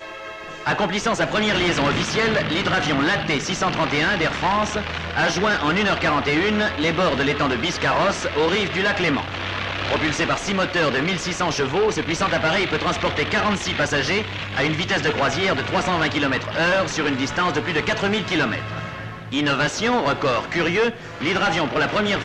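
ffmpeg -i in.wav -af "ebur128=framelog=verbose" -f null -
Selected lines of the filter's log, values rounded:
Integrated loudness:
  I:         -20.7 LUFS
  Threshold: -30.8 LUFS
Loudness range:
  LRA:         1.8 LU
  Threshold: -40.8 LUFS
  LRA low:   -21.8 LUFS
  LRA high:  -19.9 LUFS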